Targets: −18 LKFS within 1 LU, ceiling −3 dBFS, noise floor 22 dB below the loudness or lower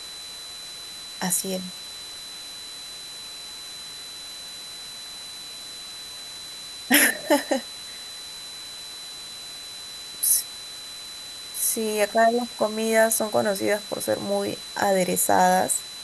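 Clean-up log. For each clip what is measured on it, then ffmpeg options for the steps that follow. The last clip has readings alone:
interfering tone 4,000 Hz; level of the tone −37 dBFS; background noise floor −38 dBFS; target noise floor −48 dBFS; integrated loudness −26.0 LKFS; sample peak −3.0 dBFS; target loudness −18.0 LKFS
→ -af "bandreject=frequency=4000:width=30"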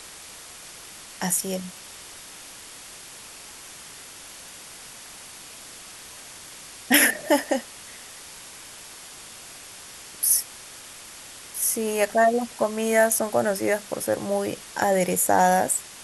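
interfering tone none found; background noise floor −43 dBFS; target noise floor −45 dBFS
→ -af "afftdn=noise_reduction=6:noise_floor=-43"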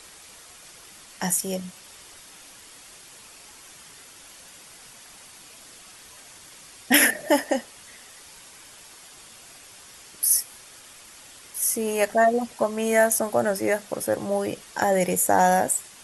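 background noise floor −48 dBFS; integrated loudness −22.5 LKFS; sample peak −3.0 dBFS; target loudness −18.0 LKFS
→ -af "volume=4.5dB,alimiter=limit=-3dB:level=0:latency=1"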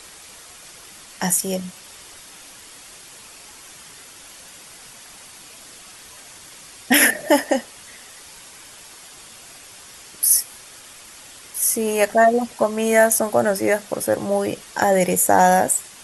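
integrated loudness −18.5 LKFS; sample peak −3.0 dBFS; background noise floor −43 dBFS

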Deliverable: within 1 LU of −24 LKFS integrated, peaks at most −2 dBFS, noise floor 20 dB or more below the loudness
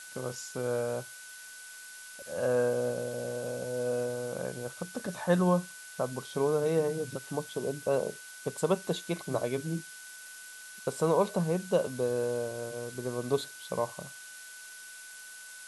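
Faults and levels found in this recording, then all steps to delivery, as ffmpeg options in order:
interfering tone 1,500 Hz; level of the tone −48 dBFS; background noise floor −47 dBFS; target noise floor −52 dBFS; integrated loudness −32.0 LKFS; sample peak −13.0 dBFS; target loudness −24.0 LKFS
→ -af "bandreject=frequency=1500:width=30"
-af "afftdn=noise_reduction=6:noise_floor=-47"
-af "volume=8dB"

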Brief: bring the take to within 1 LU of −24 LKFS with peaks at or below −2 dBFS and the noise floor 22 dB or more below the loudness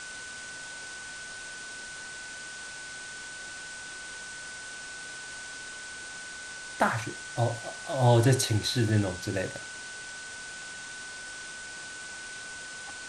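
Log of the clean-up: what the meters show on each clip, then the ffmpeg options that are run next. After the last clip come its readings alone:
interfering tone 1,500 Hz; level of the tone −41 dBFS; background noise floor −42 dBFS; target noise floor −55 dBFS; integrated loudness −32.5 LKFS; sample peak −10.0 dBFS; target loudness −24.0 LKFS
→ -af "bandreject=frequency=1500:width=30"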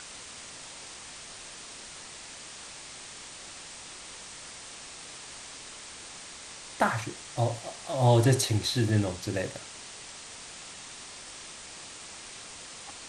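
interfering tone none found; background noise floor −45 dBFS; target noise floor −55 dBFS
→ -af "afftdn=noise_reduction=10:noise_floor=-45"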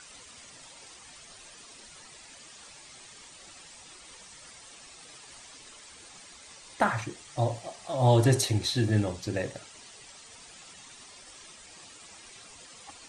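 background noise floor −51 dBFS; integrated loudness −27.5 LKFS; sample peak −10.5 dBFS; target loudness −24.0 LKFS
→ -af "volume=3.5dB"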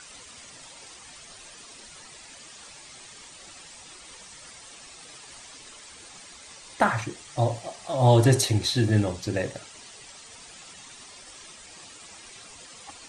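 integrated loudness −24.0 LKFS; sample peak −7.0 dBFS; background noise floor −47 dBFS

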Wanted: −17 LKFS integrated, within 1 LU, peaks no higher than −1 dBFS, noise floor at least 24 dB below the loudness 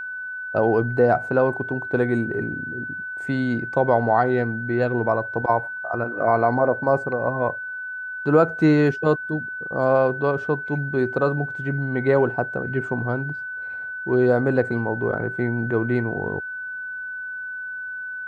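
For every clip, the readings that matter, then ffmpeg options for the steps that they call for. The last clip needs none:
interfering tone 1,500 Hz; level of the tone −29 dBFS; integrated loudness −23.0 LKFS; sample peak −4.5 dBFS; target loudness −17.0 LKFS
→ -af "bandreject=frequency=1500:width=30"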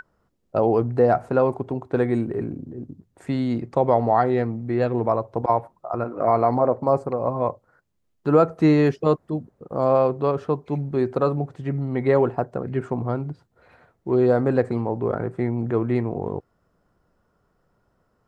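interfering tone none found; integrated loudness −22.5 LKFS; sample peak −5.0 dBFS; target loudness −17.0 LKFS
→ -af "volume=5.5dB,alimiter=limit=-1dB:level=0:latency=1"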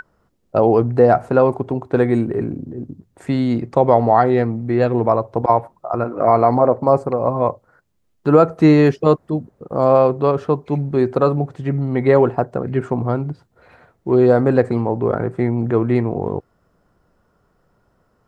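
integrated loudness −17.5 LKFS; sample peak −1.0 dBFS; background noise floor −64 dBFS

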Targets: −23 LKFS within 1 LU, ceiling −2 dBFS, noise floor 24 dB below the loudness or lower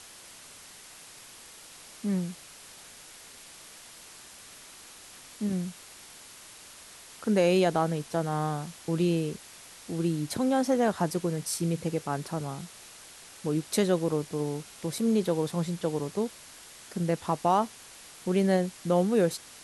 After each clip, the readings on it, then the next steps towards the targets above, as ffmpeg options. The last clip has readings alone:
background noise floor −50 dBFS; target noise floor −53 dBFS; integrated loudness −29.0 LKFS; sample peak −12.0 dBFS; target loudness −23.0 LKFS
→ -af "afftdn=noise_reduction=6:noise_floor=-50"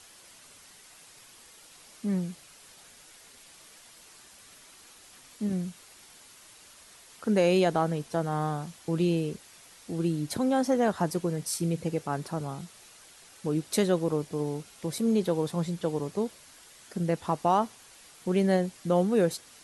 background noise floor −54 dBFS; integrated loudness −29.0 LKFS; sample peak −12.0 dBFS; target loudness −23.0 LKFS
→ -af "volume=6dB"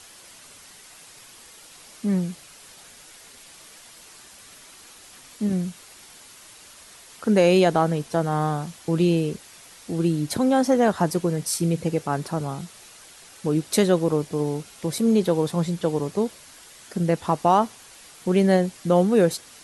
integrated loudness −23.0 LKFS; sample peak −6.0 dBFS; background noise floor −48 dBFS

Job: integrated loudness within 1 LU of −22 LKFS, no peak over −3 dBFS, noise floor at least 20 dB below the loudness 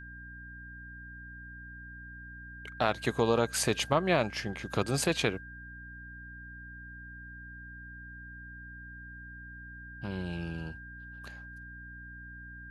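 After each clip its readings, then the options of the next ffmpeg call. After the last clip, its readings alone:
mains hum 60 Hz; hum harmonics up to 300 Hz; level of the hum −47 dBFS; interfering tone 1,600 Hz; level of the tone −46 dBFS; integrated loudness −31.0 LKFS; sample peak −10.0 dBFS; target loudness −22.0 LKFS
→ -af "bandreject=frequency=60:width_type=h:width=4,bandreject=frequency=120:width_type=h:width=4,bandreject=frequency=180:width_type=h:width=4,bandreject=frequency=240:width_type=h:width=4,bandreject=frequency=300:width_type=h:width=4"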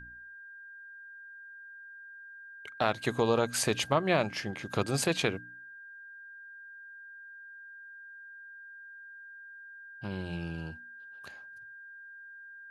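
mains hum none found; interfering tone 1,600 Hz; level of the tone −46 dBFS
→ -af "bandreject=frequency=1600:width=30"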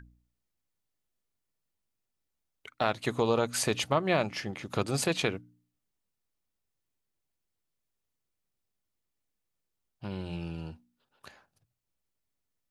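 interfering tone none found; integrated loudness −30.5 LKFS; sample peak −10.5 dBFS; target loudness −22.0 LKFS
→ -af "volume=8.5dB,alimiter=limit=-3dB:level=0:latency=1"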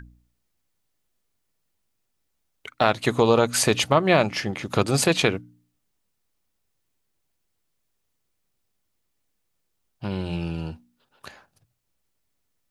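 integrated loudness −22.0 LKFS; sample peak −3.0 dBFS; background noise floor −75 dBFS

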